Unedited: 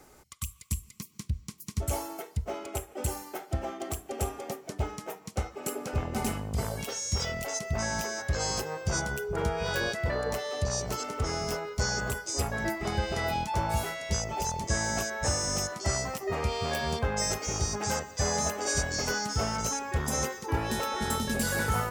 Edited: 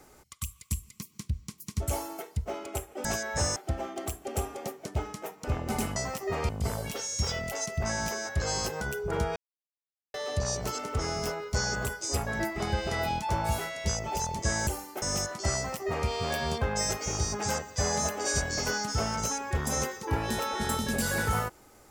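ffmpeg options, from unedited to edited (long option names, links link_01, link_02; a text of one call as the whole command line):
ffmpeg -i in.wav -filter_complex "[0:a]asplit=11[link_01][link_02][link_03][link_04][link_05][link_06][link_07][link_08][link_09][link_10][link_11];[link_01]atrim=end=3.052[link_12];[link_02]atrim=start=14.918:end=15.432[link_13];[link_03]atrim=start=3.398:end=5.282[link_14];[link_04]atrim=start=5.898:end=6.422[link_15];[link_05]atrim=start=15.958:end=16.492[link_16];[link_06]atrim=start=6.418:end=8.742[link_17];[link_07]atrim=start=9.058:end=9.61,asetpts=PTS-STARTPTS,afade=type=out:start_time=0.548:duration=0.004:curve=hsin[link_18];[link_08]atrim=start=9.61:end=10.39,asetpts=PTS-STARTPTS,volume=0[link_19];[link_09]atrim=start=10.39:end=14.922,asetpts=PTS-STARTPTS,afade=type=in:duration=0.004:curve=hsin[link_20];[link_10]atrim=start=3.048:end=3.402[link_21];[link_11]atrim=start=15.428[link_22];[link_12][link_13]acrossfade=duration=0.004:curve1=hsin:curve2=hsin[link_23];[link_23][link_14]acrossfade=duration=0.004:curve1=hsin:curve2=hsin[link_24];[link_24][link_15]acrossfade=duration=0.004:curve1=hsin:curve2=hsin[link_25];[link_25][link_16]acrossfade=duration=0.004:curve1=hsin:curve2=hsin[link_26];[link_26][link_17]acrossfade=duration=0.004:curve1=hsin:curve2=hsin[link_27];[link_18][link_19][link_20]concat=n=3:v=0:a=1[link_28];[link_27][link_28]acrossfade=duration=0.004:curve1=hsin:curve2=hsin[link_29];[link_29][link_21]acrossfade=duration=0.004:curve1=hsin:curve2=hsin[link_30];[link_30][link_22]acrossfade=duration=0.004:curve1=hsin:curve2=hsin" out.wav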